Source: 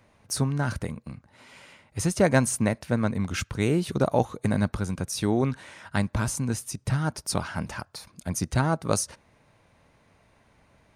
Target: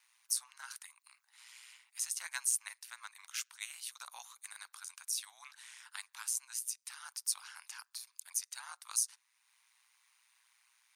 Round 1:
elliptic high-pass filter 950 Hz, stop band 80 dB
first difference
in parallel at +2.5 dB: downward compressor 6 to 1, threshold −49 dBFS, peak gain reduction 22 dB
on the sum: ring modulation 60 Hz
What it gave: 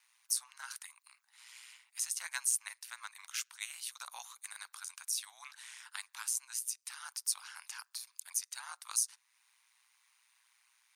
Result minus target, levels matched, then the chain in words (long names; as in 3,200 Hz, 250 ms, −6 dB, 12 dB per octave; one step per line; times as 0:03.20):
downward compressor: peak gain reduction −7.5 dB
elliptic high-pass filter 950 Hz, stop band 80 dB
first difference
in parallel at +2.5 dB: downward compressor 6 to 1, threshold −58 dBFS, peak gain reduction 29.5 dB
on the sum: ring modulation 60 Hz